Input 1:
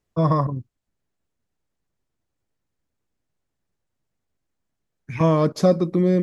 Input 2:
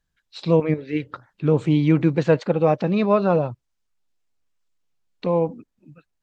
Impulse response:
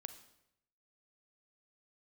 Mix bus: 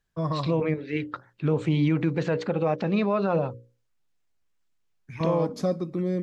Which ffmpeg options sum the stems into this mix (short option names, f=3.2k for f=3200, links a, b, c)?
-filter_complex "[0:a]volume=-10dB,asplit=2[a][b];[b]volume=-12dB[c];[1:a]equalizer=f=1.8k:t=o:w=1.4:g=3,bandreject=f=60:t=h:w=6,bandreject=f=120:t=h:w=6,bandreject=f=180:t=h:w=6,bandreject=f=240:t=h:w=6,bandreject=f=300:t=h:w=6,bandreject=f=360:t=h:w=6,bandreject=f=420:t=h:w=6,bandreject=f=480:t=h:w=6,bandreject=f=540:t=h:w=6,volume=-2dB[d];[2:a]atrim=start_sample=2205[e];[c][e]afir=irnorm=-1:irlink=0[f];[a][d][f]amix=inputs=3:normalize=0,alimiter=limit=-14.5dB:level=0:latency=1:release=89"